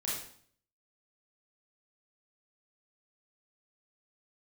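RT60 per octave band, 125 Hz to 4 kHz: 0.75 s, 0.65 s, 0.55 s, 0.55 s, 0.50 s, 0.50 s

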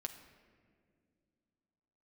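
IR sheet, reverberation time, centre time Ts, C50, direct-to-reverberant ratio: no single decay rate, 19 ms, 10.0 dB, 4.5 dB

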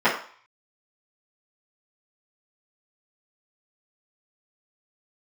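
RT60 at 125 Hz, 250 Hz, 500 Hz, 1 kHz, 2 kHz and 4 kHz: 0.35 s, 0.35 s, 0.40 s, 0.55 s, 0.50 s, 0.50 s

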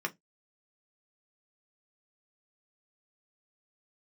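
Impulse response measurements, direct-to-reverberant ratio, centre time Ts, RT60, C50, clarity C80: 2.5 dB, 5 ms, 0.15 s, 25.0 dB, 38.0 dB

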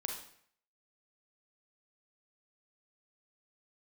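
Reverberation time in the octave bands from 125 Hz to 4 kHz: 0.60 s, 0.60 s, 0.60 s, 0.60 s, 0.60 s, 0.55 s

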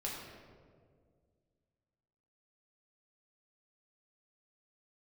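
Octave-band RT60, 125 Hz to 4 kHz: 2.6 s, 2.4 s, 2.2 s, 1.7 s, 1.2 s, 0.95 s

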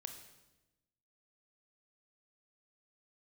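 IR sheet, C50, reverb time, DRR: 7.5 dB, 1.0 s, 5.5 dB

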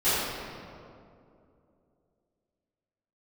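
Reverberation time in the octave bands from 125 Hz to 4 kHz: 2.9 s, 3.1 s, 2.9 s, 2.3 s, 1.7 s, 1.3 s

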